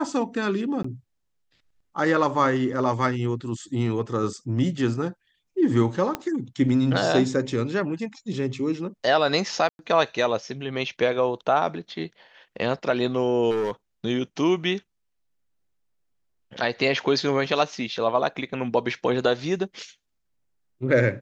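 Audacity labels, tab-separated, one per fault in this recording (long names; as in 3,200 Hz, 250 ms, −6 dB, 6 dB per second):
0.830000	0.840000	drop-out 14 ms
6.150000	6.150000	click −12 dBFS
9.690000	9.790000	drop-out 101 ms
13.500000	13.720000	clipping −21.5 dBFS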